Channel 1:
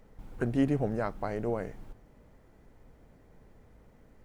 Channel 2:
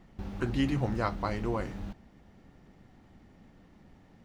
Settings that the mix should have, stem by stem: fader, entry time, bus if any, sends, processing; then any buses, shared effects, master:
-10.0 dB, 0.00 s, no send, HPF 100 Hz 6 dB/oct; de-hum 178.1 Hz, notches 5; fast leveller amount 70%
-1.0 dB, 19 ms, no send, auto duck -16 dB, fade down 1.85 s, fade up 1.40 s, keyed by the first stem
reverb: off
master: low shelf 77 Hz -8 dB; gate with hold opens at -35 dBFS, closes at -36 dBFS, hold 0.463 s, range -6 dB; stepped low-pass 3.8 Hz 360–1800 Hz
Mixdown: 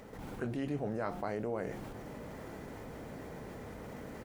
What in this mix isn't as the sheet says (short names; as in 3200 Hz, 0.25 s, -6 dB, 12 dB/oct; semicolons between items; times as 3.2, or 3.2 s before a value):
stem 2 -1.0 dB -> -10.5 dB; master: missing stepped low-pass 3.8 Hz 360–1800 Hz